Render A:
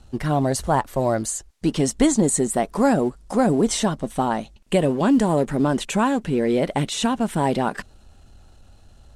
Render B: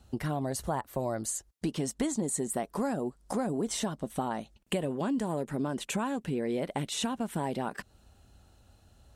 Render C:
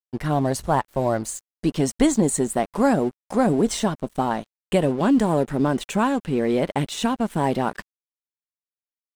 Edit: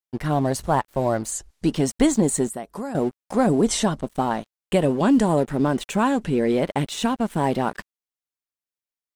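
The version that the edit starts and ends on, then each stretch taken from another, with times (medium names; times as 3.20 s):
C
1.32–1.75 s: from A
2.49–2.95 s: from B
3.47–4.01 s: from A
4.84–5.40 s: from A
6.04–6.52 s: from A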